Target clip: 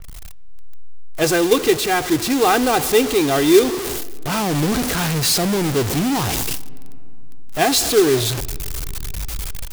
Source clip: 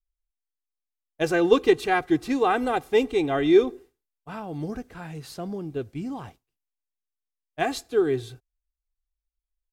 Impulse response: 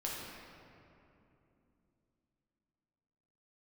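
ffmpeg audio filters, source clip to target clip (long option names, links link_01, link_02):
-filter_complex "[0:a]aeval=exprs='val(0)+0.5*0.0631*sgn(val(0))':channel_layout=same,acrusher=bits=4:mode=log:mix=0:aa=0.000001,dynaudnorm=framelen=370:gausssize=3:maxgain=9dB,asplit=2[link_01][link_02];[1:a]atrim=start_sample=2205,lowpass=5900[link_03];[link_02][link_03]afir=irnorm=-1:irlink=0,volume=-21.5dB[link_04];[link_01][link_04]amix=inputs=2:normalize=0,adynamicequalizer=threshold=0.0224:dfrequency=3200:dqfactor=0.7:tfrequency=3200:tqfactor=0.7:attack=5:release=100:ratio=0.375:range=3.5:mode=boostabove:tftype=highshelf,volume=-3dB"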